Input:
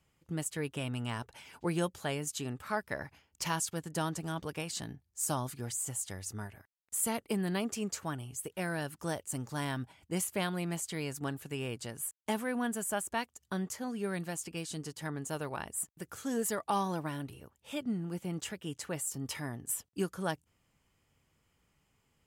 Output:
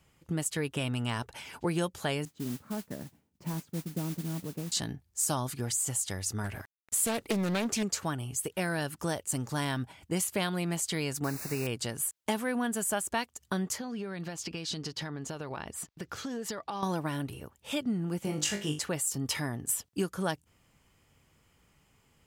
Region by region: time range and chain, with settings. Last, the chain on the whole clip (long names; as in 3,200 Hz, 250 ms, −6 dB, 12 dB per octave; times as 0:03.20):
0:02.25–0:04.72: resonant band-pass 210 Hz, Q 1.7 + noise that follows the level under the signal 12 dB
0:06.44–0:07.83: mu-law and A-law mismatch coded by mu + highs frequency-modulated by the lows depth 0.45 ms
0:11.24–0:11.67: bit-depth reduction 8 bits, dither triangular + Butterworth band-reject 3,200 Hz, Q 2.2
0:13.78–0:16.83: high shelf with overshoot 6,700 Hz −10.5 dB, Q 1.5 + downward compressor 12 to 1, threshold −40 dBFS
0:18.23–0:18.79: parametric band 6,100 Hz +6 dB 0.68 octaves + flutter between parallel walls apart 3.4 metres, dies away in 0.29 s
whole clip: downward compressor 2 to 1, threshold −38 dBFS; dynamic equaliser 4,400 Hz, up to +4 dB, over −53 dBFS, Q 1.1; level +7.5 dB